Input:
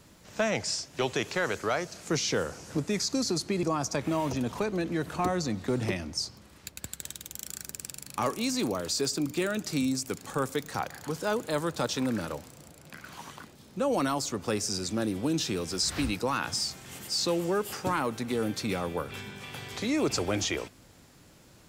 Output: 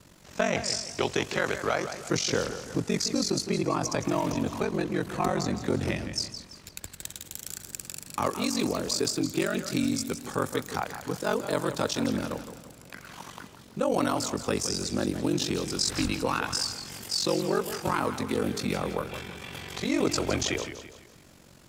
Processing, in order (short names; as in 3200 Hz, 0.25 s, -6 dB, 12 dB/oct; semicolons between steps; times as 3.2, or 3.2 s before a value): ring modulator 23 Hz; warbling echo 0.167 s, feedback 41%, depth 112 cents, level -10.5 dB; gain +4 dB